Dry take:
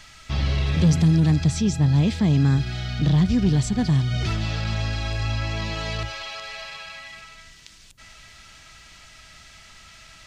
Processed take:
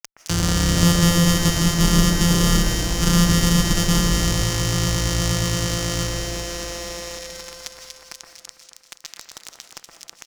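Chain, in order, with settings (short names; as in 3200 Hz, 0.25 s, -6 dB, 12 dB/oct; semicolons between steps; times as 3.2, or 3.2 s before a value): sample sorter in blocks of 256 samples; low shelf 97 Hz +9.5 dB; comb 6.4 ms, depth 46%; sample gate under -31 dBFS; bell 6700 Hz +14.5 dB 1.4 oct; formant shift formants -2 st; one-sided clip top -16.5 dBFS; echo with dull and thin repeats by turns 0.12 s, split 2000 Hz, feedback 74%, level -5 dB; reverb RT60 0.90 s, pre-delay 0.12 s, DRR 8 dB; mismatched tape noise reduction encoder only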